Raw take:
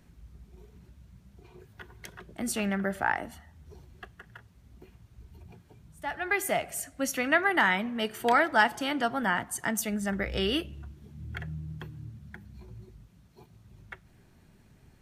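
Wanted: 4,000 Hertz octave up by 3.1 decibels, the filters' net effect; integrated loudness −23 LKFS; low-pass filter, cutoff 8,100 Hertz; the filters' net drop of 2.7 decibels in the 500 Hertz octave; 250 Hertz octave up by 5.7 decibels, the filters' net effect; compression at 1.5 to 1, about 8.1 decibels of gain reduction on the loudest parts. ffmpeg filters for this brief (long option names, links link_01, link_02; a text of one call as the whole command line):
ffmpeg -i in.wav -af "lowpass=8100,equalizer=frequency=250:width_type=o:gain=8.5,equalizer=frequency=500:width_type=o:gain=-6.5,equalizer=frequency=4000:width_type=o:gain=5,acompressor=threshold=-41dB:ratio=1.5,volume=12dB" out.wav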